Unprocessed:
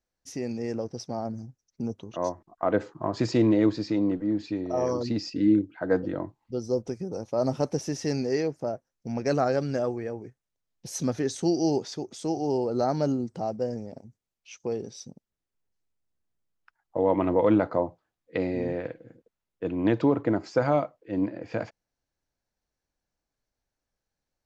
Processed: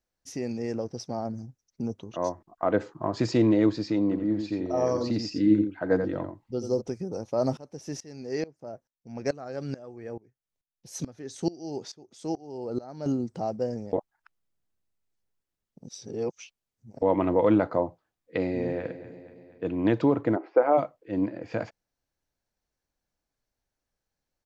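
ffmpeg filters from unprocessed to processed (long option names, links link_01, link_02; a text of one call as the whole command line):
ffmpeg -i in.wav -filter_complex "[0:a]asplit=3[link_01][link_02][link_03];[link_01]afade=type=out:start_time=4.11:duration=0.02[link_04];[link_02]aecho=1:1:86:0.422,afade=type=in:start_time=4.11:duration=0.02,afade=type=out:start_time=6.8:duration=0.02[link_05];[link_03]afade=type=in:start_time=6.8:duration=0.02[link_06];[link_04][link_05][link_06]amix=inputs=3:normalize=0,asettb=1/sr,asplit=3[link_07][link_08][link_09];[link_07]atrim=end=7.574[link_10];[link_08]atrim=start=7.57:end=13.06,asetpts=PTS-STARTPTS,afade=type=in:duration=0.004:curve=qsin,afade=type=out:start_time=5.486:duration=0.004:curve=qsin,aeval=exprs='val(0)*pow(10,-22*if(lt(mod(-2.3*n/s,1),2*abs(-2.3)/1000),1-mod(-2.3*n/s,1)/(2*abs(-2.3)/1000),(mod(-2.3*n/s,1)-2*abs(-2.3)/1000)/(1-2*abs(-2.3)/1000))/20)':channel_layout=same[link_11];[link_09]atrim=start=13.056[link_12];[link_10][link_11]acrossfade=duration=0.004:curve1=hsin:curve2=qsin[link_13];[link_13][link_12]acrossfade=duration=0.004:curve1=qsin:curve2=hsin,asplit=2[link_14][link_15];[link_15]afade=type=in:start_time=18.39:duration=0.01,afade=type=out:start_time=18.85:duration=0.01,aecho=0:1:240|480|720|960|1200|1440:0.199526|0.119716|0.0718294|0.0430977|0.0258586|0.0155152[link_16];[link_14][link_16]amix=inputs=2:normalize=0,asplit=3[link_17][link_18][link_19];[link_17]afade=type=out:start_time=20.35:duration=0.02[link_20];[link_18]highpass=frequency=320:width=0.5412,highpass=frequency=320:width=1.3066,equalizer=frequency=330:width_type=q:width=4:gain=5,equalizer=frequency=490:width_type=q:width=4:gain=4,equalizer=frequency=770:width_type=q:width=4:gain=5,equalizer=frequency=1700:width_type=q:width=4:gain=-4,lowpass=frequency=2300:width=0.5412,lowpass=frequency=2300:width=1.3066,afade=type=in:start_time=20.35:duration=0.02,afade=type=out:start_time=20.77:duration=0.02[link_21];[link_19]afade=type=in:start_time=20.77:duration=0.02[link_22];[link_20][link_21][link_22]amix=inputs=3:normalize=0,asplit=3[link_23][link_24][link_25];[link_23]atrim=end=13.932[link_26];[link_24]atrim=start=13.928:end=17.022,asetpts=PTS-STARTPTS,areverse[link_27];[link_25]atrim=start=17.018[link_28];[link_26][link_27]acrossfade=duration=0.004:curve1=hsin:curve2=hsin[link_29];[link_29][link_28]acrossfade=duration=0.004:curve1=hsin:curve2=hsin" out.wav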